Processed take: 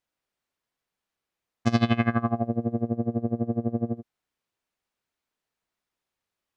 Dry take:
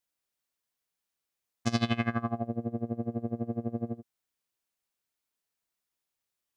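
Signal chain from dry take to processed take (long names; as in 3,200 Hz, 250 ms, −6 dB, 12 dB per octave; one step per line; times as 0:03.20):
low-pass filter 2,200 Hz 6 dB per octave, from 0:02.87 1,300 Hz, from 0:03.97 2,400 Hz
level +6.5 dB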